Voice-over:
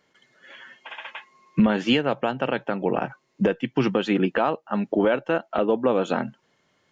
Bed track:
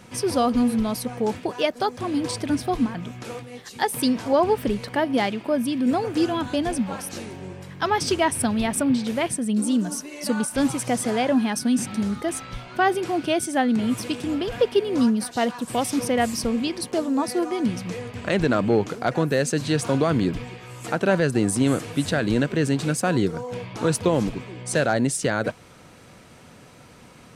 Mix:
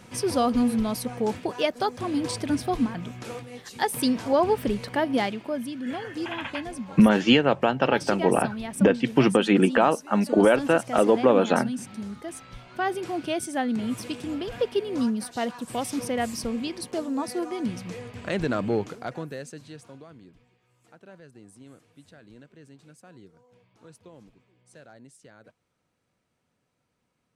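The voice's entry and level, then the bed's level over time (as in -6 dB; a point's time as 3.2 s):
5.40 s, +2.5 dB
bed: 5.16 s -2 dB
5.81 s -10.5 dB
12.28 s -10.5 dB
13.05 s -5.5 dB
18.78 s -5.5 dB
20.19 s -28.5 dB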